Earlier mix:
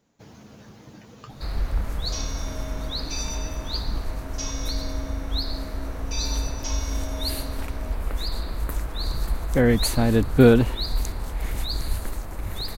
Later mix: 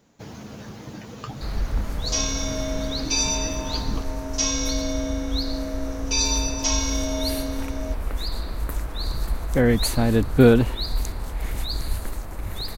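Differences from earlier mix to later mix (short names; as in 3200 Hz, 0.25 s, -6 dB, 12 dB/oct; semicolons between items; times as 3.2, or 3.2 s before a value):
speech +8.0 dB; second sound +10.0 dB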